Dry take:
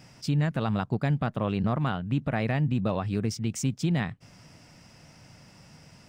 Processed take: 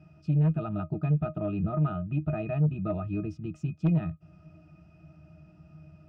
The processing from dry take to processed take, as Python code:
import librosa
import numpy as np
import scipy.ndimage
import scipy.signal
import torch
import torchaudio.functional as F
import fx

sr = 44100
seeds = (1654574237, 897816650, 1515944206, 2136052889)

y = fx.octave_resonator(x, sr, note='D#', decay_s=0.11)
y = fx.cheby_harmonics(y, sr, harmonics=(5, 7), levels_db=(-17, -29), full_scale_db=-18.5)
y = y * librosa.db_to_amplitude(3.5)